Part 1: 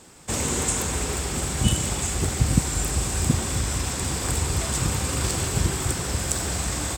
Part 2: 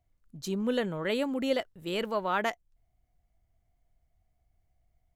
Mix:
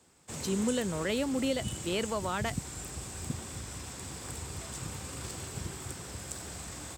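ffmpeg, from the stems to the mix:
ffmpeg -i stem1.wav -i stem2.wav -filter_complex "[0:a]volume=-14.5dB[link_01];[1:a]volume=1dB[link_02];[link_01][link_02]amix=inputs=2:normalize=0,highpass=73,acrossover=split=290|3000[link_03][link_04][link_05];[link_04]acompressor=threshold=-31dB:ratio=6[link_06];[link_03][link_06][link_05]amix=inputs=3:normalize=0" out.wav

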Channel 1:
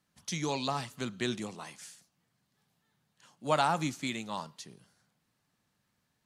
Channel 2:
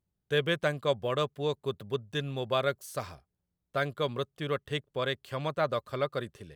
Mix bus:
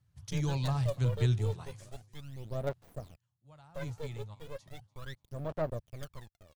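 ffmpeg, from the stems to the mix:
ffmpeg -i stem1.wav -i stem2.wav -filter_complex "[0:a]lowshelf=frequency=150:width_type=q:width=3:gain=11,volume=-7.5dB,afade=type=out:start_time=3.05:duration=0.22:silence=0.316228,asplit=2[link_01][link_02];[link_02]volume=-22.5dB[link_03];[1:a]acrusher=bits=4:dc=4:mix=0:aa=0.000001,aphaser=in_gain=1:out_gain=1:delay=2.3:decay=0.75:speed=0.36:type=sinusoidal,adynamicequalizer=threshold=0.00891:dfrequency=640:dqfactor=2:tfrequency=640:tqfactor=2:attack=5:release=100:ratio=0.375:range=4:mode=boostabove:tftype=bell,volume=-19dB,asplit=2[link_04][link_05];[link_05]apad=whole_len=275713[link_06];[link_01][link_06]sidechaingate=range=-16dB:threshold=-55dB:ratio=16:detection=peak[link_07];[link_03]aecho=0:1:291|582|873|1164|1455:1|0.38|0.144|0.0549|0.0209[link_08];[link_07][link_04][link_08]amix=inputs=3:normalize=0,equalizer=frequency=76:width=0.31:gain=11.5" out.wav

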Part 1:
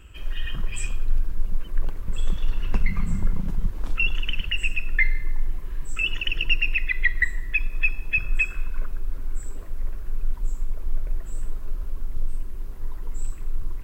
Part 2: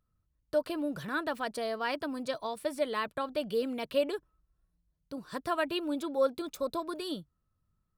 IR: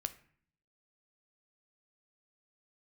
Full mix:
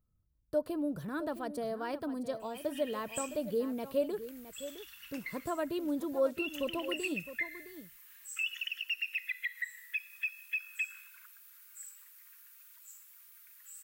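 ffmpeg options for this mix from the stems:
-filter_complex "[0:a]highpass=frequency=1500:width=0.5412,highpass=frequency=1500:width=1.3066,aemphasis=mode=production:type=bsi,alimiter=limit=-17dB:level=0:latency=1:release=166,adelay=2400,volume=-9dB[link_01];[1:a]equalizer=frequency=2800:width=0.37:gain=-13.5,volume=-0.5dB,asplit=4[link_02][link_03][link_04][link_05];[link_03]volume=-13dB[link_06];[link_04]volume=-11dB[link_07];[link_05]apad=whole_len=716107[link_08];[link_01][link_08]sidechaincompress=threshold=-38dB:ratio=3:attack=31:release=358[link_09];[2:a]atrim=start_sample=2205[link_10];[link_06][link_10]afir=irnorm=-1:irlink=0[link_11];[link_07]aecho=0:1:663:1[link_12];[link_09][link_02][link_11][link_12]amix=inputs=4:normalize=0"

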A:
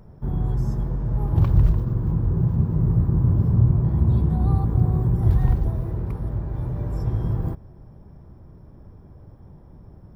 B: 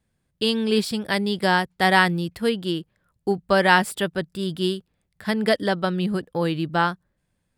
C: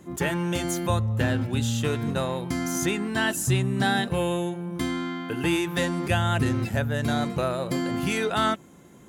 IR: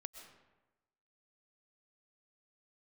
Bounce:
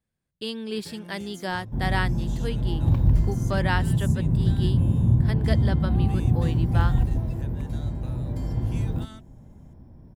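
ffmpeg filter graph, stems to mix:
-filter_complex "[0:a]equalizer=frequency=250:width_type=o:width=0.33:gain=8,equalizer=frequency=400:width_type=o:width=0.33:gain=-5,equalizer=frequency=1250:width_type=o:width=0.33:gain=-10,adelay=1500,volume=-2.5dB[link_01];[1:a]volume=-10dB[link_02];[2:a]acrossover=split=300|3000[link_03][link_04][link_05];[link_04]acompressor=threshold=-39dB:ratio=2.5[link_06];[link_03][link_06][link_05]amix=inputs=3:normalize=0,adelay=650,volume=-15.5dB[link_07];[link_01][link_02][link_07]amix=inputs=3:normalize=0"

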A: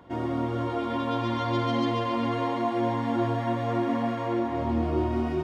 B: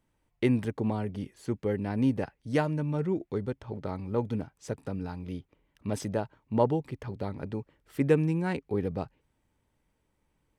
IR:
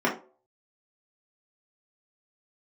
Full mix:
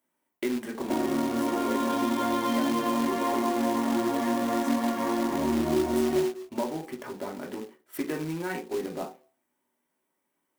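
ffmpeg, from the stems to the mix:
-filter_complex "[0:a]adelay=800,volume=-0.5dB,asplit=2[link_01][link_02];[link_02]volume=-7.5dB[link_03];[1:a]highpass=frequency=470:poles=1,agate=range=-7dB:threshold=-57dB:ratio=16:detection=peak,acompressor=threshold=-41dB:ratio=1.5,volume=-3dB,asplit=2[link_04][link_05];[link_05]volume=-7dB[link_06];[2:a]atrim=start_sample=2205[link_07];[link_03][link_06]amix=inputs=2:normalize=0[link_08];[link_08][link_07]afir=irnorm=-1:irlink=0[link_09];[link_01][link_04][link_09]amix=inputs=3:normalize=0,aemphasis=mode=production:type=50fm,acrusher=bits=3:mode=log:mix=0:aa=0.000001,acompressor=threshold=-27dB:ratio=2.5"

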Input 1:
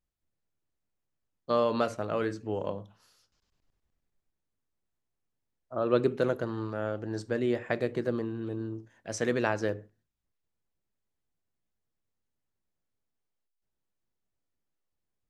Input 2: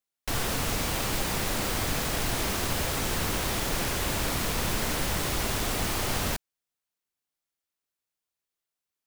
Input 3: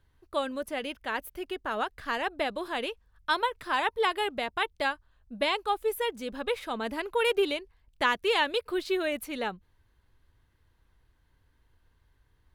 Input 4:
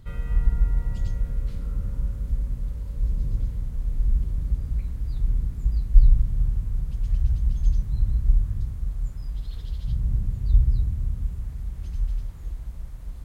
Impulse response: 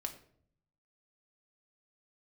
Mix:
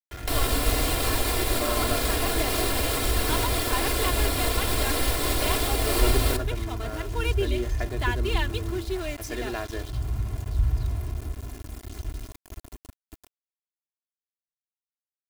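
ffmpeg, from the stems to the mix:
-filter_complex "[0:a]adelay=100,volume=-6dB[link_01];[1:a]equalizer=frequency=500:width_type=o:width=0.33:gain=12,equalizer=frequency=4000:width_type=o:width=0.33:gain=3,equalizer=frequency=6300:width_type=o:width=0.33:gain=-8,alimiter=level_in=0.5dB:limit=-24dB:level=0:latency=1:release=471,volume=-0.5dB,volume=3dB,asplit=2[link_02][link_03];[link_03]volume=-3.5dB[link_04];[2:a]volume=-6.5dB[link_05];[3:a]highpass=89,adelay=50,volume=0.5dB,asplit=2[link_06][link_07];[link_07]volume=-23.5dB[link_08];[4:a]atrim=start_sample=2205[link_09];[link_04][link_08]amix=inputs=2:normalize=0[link_10];[link_10][link_09]afir=irnorm=-1:irlink=0[link_11];[link_01][link_02][link_05][link_06][link_11]amix=inputs=5:normalize=0,equalizer=frequency=10000:width=0.54:gain=3.5,aeval=exprs='val(0)*gte(abs(val(0)),0.0141)':channel_layout=same,aecho=1:1:2.9:0.74"

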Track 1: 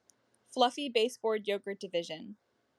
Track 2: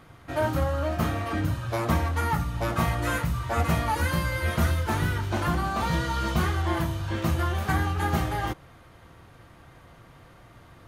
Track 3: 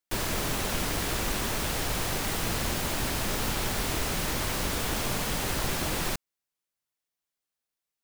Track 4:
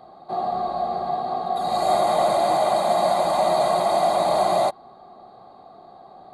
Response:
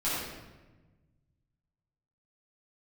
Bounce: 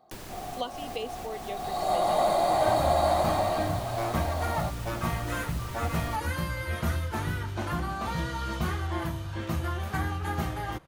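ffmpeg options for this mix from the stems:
-filter_complex "[0:a]volume=-7dB,asplit=2[link_01][link_02];[1:a]adelay=2250,volume=-5dB[link_03];[2:a]acrossover=split=81|710[link_04][link_05][link_06];[link_04]acompressor=threshold=-42dB:ratio=4[link_07];[link_05]acompressor=threshold=-41dB:ratio=4[link_08];[link_06]acompressor=threshold=-43dB:ratio=4[link_09];[link_07][link_08][link_09]amix=inputs=3:normalize=0,volume=-3.5dB[link_10];[3:a]volume=-4.5dB,afade=type=in:start_time=1.43:duration=0.75:silence=0.316228,afade=type=out:start_time=3.17:duration=0.62:silence=0.316228[link_11];[link_02]apad=whole_len=354554[link_12];[link_10][link_12]sidechaincompress=threshold=-37dB:ratio=8:attack=16:release=210[link_13];[link_01][link_03][link_13][link_11]amix=inputs=4:normalize=0"

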